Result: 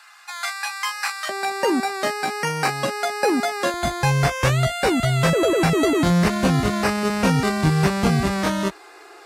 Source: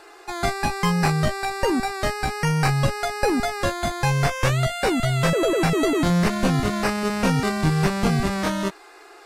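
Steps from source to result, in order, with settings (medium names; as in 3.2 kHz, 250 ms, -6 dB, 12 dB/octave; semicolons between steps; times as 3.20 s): high-pass 1.1 kHz 24 dB/octave, from 1.29 s 210 Hz, from 3.74 s 42 Hz; trim +2 dB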